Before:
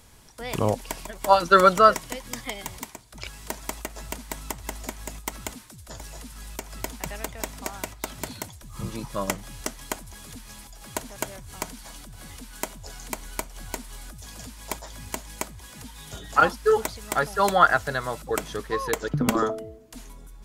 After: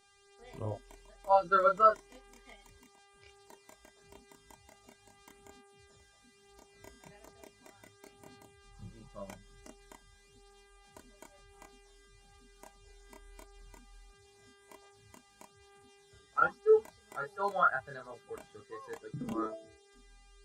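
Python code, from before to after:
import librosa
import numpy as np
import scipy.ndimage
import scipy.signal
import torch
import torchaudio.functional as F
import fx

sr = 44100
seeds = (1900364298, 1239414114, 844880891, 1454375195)

y = fx.dmg_buzz(x, sr, base_hz=400.0, harmonics=25, level_db=-40.0, tilt_db=-2, odd_only=False)
y = fx.chorus_voices(y, sr, voices=2, hz=0.36, base_ms=29, depth_ms=1.6, mix_pct=45)
y = fx.spectral_expand(y, sr, expansion=1.5)
y = F.gain(torch.from_numpy(y), -6.5).numpy()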